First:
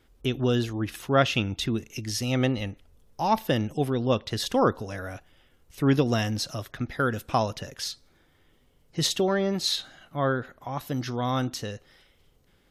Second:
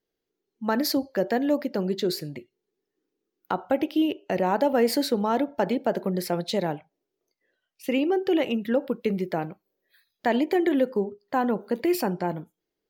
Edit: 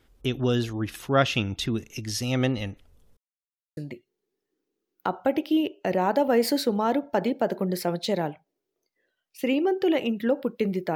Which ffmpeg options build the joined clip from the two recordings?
ffmpeg -i cue0.wav -i cue1.wav -filter_complex "[0:a]apad=whole_dur=10.95,atrim=end=10.95,asplit=2[link_01][link_02];[link_01]atrim=end=3.17,asetpts=PTS-STARTPTS,afade=type=out:start_time=3.166:duration=0.004:curve=hsin[link_03];[link_02]atrim=start=3.17:end=3.77,asetpts=PTS-STARTPTS,volume=0[link_04];[1:a]atrim=start=2.22:end=9.4,asetpts=PTS-STARTPTS,afade=type=in:duration=0.004:curve=hsin[link_05];[link_03][link_04][link_05]concat=n=3:v=0:a=1" out.wav

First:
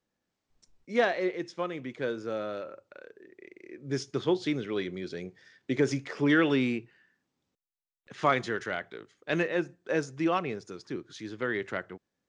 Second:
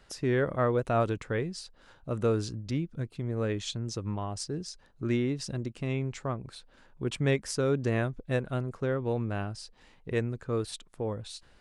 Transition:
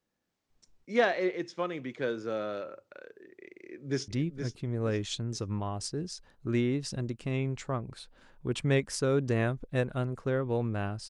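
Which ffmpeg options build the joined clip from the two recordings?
ffmpeg -i cue0.wav -i cue1.wav -filter_complex "[0:a]apad=whole_dur=11.09,atrim=end=11.09,atrim=end=4.082[link_01];[1:a]atrim=start=2.638:end=9.65[link_02];[link_01][link_02]acrossfade=duration=0.004:curve1=hsin:curve2=hsin,asplit=2[link_03][link_04];[link_04]afade=type=in:start_time=3.62:duration=0.01,afade=type=out:start_time=4.08:duration=0.01,aecho=0:1:470|940|1410|1880:0.421697|0.126509|0.0379527|0.0113858[link_05];[link_03][link_05]amix=inputs=2:normalize=0" out.wav

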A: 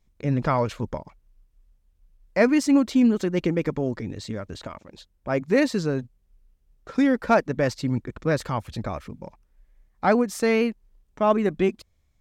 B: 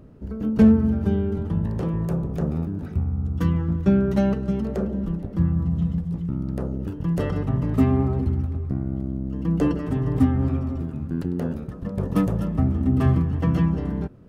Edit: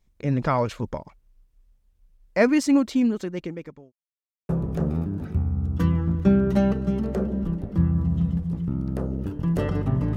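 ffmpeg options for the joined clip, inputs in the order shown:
ffmpeg -i cue0.wav -i cue1.wav -filter_complex "[0:a]apad=whole_dur=10.16,atrim=end=10.16,asplit=2[link_01][link_02];[link_01]atrim=end=3.92,asetpts=PTS-STARTPTS,afade=type=out:start_time=2.69:duration=1.23[link_03];[link_02]atrim=start=3.92:end=4.49,asetpts=PTS-STARTPTS,volume=0[link_04];[1:a]atrim=start=2.1:end=7.77,asetpts=PTS-STARTPTS,afade=type=in:duration=0.004:curve=hsin[link_05];[link_03][link_04][link_05]concat=n=3:v=0:a=1" out.wav

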